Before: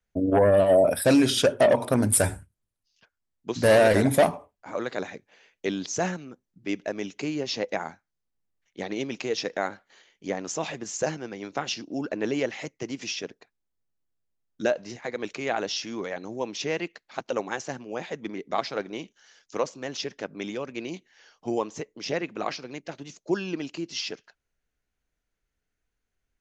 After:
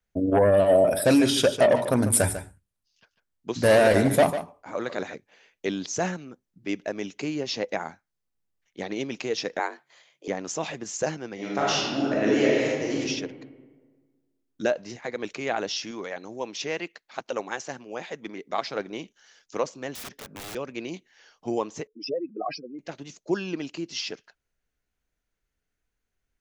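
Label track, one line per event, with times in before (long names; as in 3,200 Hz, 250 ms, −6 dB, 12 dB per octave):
0.500000	5.150000	single-tap delay 147 ms −11.5 dB
9.590000	10.280000	frequency shifter +140 Hz
11.340000	13.000000	thrown reverb, RT60 1.5 s, DRR −6 dB
15.910000	18.680000	low-shelf EQ 330 Hz −6.5 dB
19.950000	20.550000	wrap-around overflow gain 33.5 dB
21.870000	22.790000	expanding power law on the bin magnitudes exponent 3.5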